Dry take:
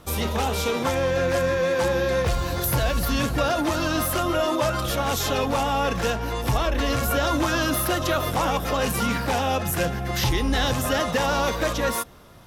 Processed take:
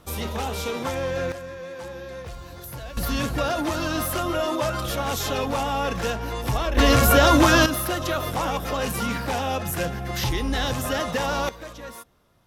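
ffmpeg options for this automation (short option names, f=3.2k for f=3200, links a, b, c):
-af "asetnsamples=n=441:p=0,asendcmd='1.32 volume volume -14dB;2.97 volume volume -2dB;6.77 volume volume 7dB;7.66 volume volume -2.5dB;11.49 volume volume -14.5dB',volume=-4dB"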